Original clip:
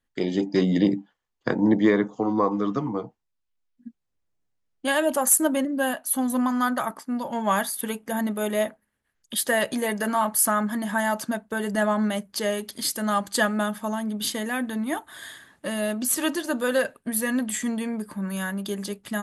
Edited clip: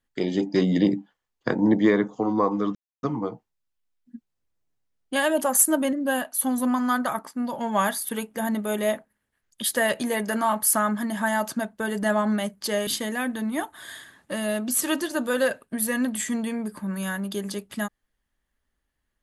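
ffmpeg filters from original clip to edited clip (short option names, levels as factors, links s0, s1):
-filter_complex "[0:a]asplit=3[s0][s1][s2];[s0]atrim=end=2.75,asetpts=PTS-STARTPTS,afade=t=out:st=2.746:d=0.004:c=hsin,apad=pad_dur=0.28[s3];[s1]atrim=start=2.75:end=12.592,asetpts=PTS-STARTPTS,afade=t=in:d=0.004:c=hsin[s4];[s2]atrim=start=14.208[s5];[s3][s4]concat=n=2:v=0:a=1[s6];[s6][s5]acrossfade=d=0.004:c1=hsin:c2=hsin"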